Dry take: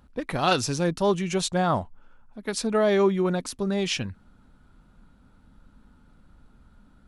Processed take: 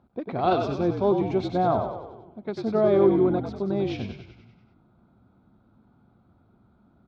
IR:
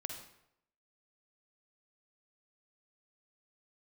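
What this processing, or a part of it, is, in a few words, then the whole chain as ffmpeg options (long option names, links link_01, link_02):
frequency-shifting delay pedal into a guitar cabinet: -filter_complex "[0:a]asplit=9[link_01][link_02][link_03][link_04][link_05][link_06][link_07][link_08][link_09];[link_02]adelay=96,afreqshift=-53,volume=-6dB[link_10];[link_03]adelay=192,afreqshift=-106,volume=-10.7dB[link_11];[link_04]adelay=288,afreqshift=-159,volume=-15.5dB[link_12];[link_05]adelay=384,afreqshift=-212,volume=-20.2dB[link_13];[link_06]adelay=480,afreqshift=-265,volume=-24.9dB[link_14];[link_07]adelay=576,afreqshift=-318,volume=-29.7dB[link_15];[link_08]adelay=672,afreqshift=-371,volume=-34.4dB[link_16];[link_09]adelay=768,afreqshift=-424,volume=-39.1dB[link_17];[link_01][link_10][link_11][link_12][link_13][link_14][link_15][link_16][link_17]amix=inputs=9:normalize=0,highpass=85,equalizer=frequency=110:width_type=q:width=4:gain=6,equalizer=frequency=220:width_type=q:width=4:gain=4,equalizer=frequency=360:width_type=q:width=4:gain=9,equalizer=frequency=700:width_type=q:width=4:gain=9,equalizer=frequency=1800:width_type=q:width=4:gain=-10,equalizer=frequency=2900:width_type=q:width=4:gain=-10,lowpass=frequency=3600:width=0.5412,lowpass=frequency=3600:width=1.3066,volume=-5dB"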